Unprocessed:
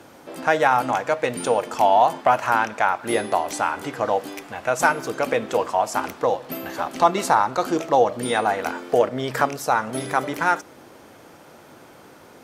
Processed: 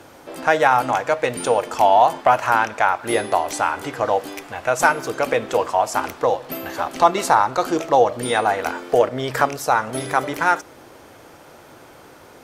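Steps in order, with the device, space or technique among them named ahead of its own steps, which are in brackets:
low shelf boost with a cut just above (low-shelf EQ 72 Hz +7 dB; parametric band 200 Hz −5.5 dB 0.92 octaves)
level +2.5 dB

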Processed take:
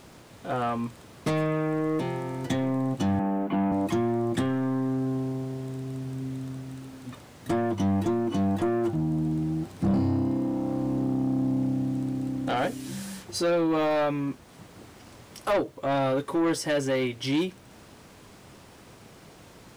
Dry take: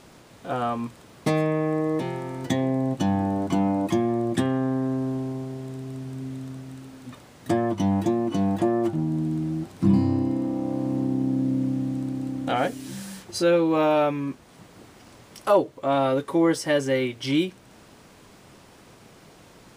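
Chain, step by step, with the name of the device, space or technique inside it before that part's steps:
0:03.19–0:03.72: elliptic band-pass filter 180–2,700 Hz
open-reel tape (soft clipping −20 dBFS, distortion −12 dB; parametric band 83 Hz +3.5 dB 0.95 octaves; white noise bed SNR 42 dB)

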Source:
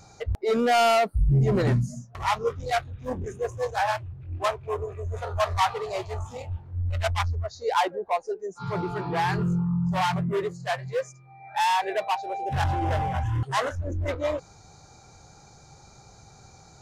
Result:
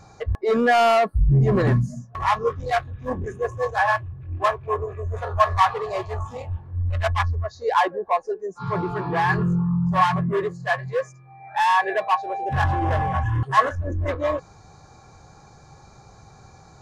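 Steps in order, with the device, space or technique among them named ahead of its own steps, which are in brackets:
inside a helmet (high-shelf EQ 3,500 Hz −9 dB; hollow resonant body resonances 1,100/1,700 Hz, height 15 dB, ringing for 90 ms)
level +3.5 dB

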